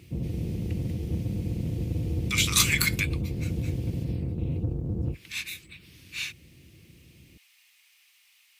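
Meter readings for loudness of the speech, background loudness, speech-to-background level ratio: -27.0 LUFS, -31.0 LUFS, 4.0 dB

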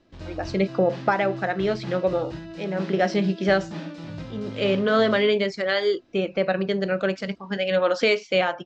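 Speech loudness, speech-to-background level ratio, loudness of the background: -23.5 LUFS, 13.5 dB, -37.0 LUFS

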